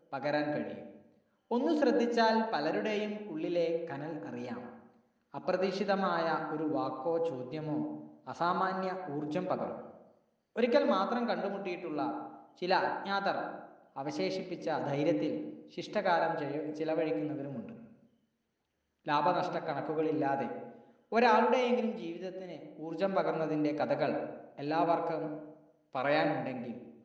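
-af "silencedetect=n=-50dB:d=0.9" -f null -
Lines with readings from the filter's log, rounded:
silence_start: 17.93
silence_end: 19.06 | silence_duration: 1.13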